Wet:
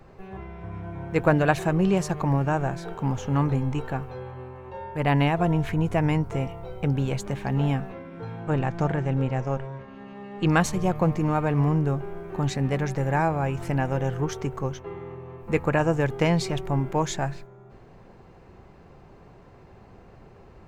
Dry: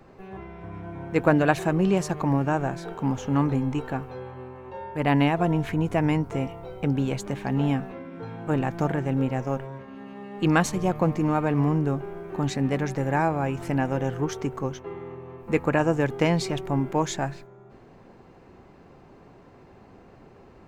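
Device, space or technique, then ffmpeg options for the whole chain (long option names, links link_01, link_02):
low shelf boost with a cut just above: -filter_complex "[0:a]lowshelf=frequency=110:gain=7.5,equalizer=frequency=270:width_type=o:width=0.56:gain=-5.5,asettb=1/sr,asplit=3[link_01][link_02][link_03];[link_01]atrim=end=8.404[link_04];[link_02]atrim=start=8.4:end=10.48,asetpts=PTS-STARTPTS,afade=type=in:duration=0.004:curve=qsin,afade=type=out:start_time=2.076:duration=0.004:curve=qsin,lowpass=7300[link_05];[link_03]atrim=start=10.476[link_06];[link_04][link_05]acrossfade=duration=0.004:curve1=hsin:curve2=qsin[link_07];[link_07][link_06]acrossfade=duration=0.004:curve1=qsin:curve2=hsin"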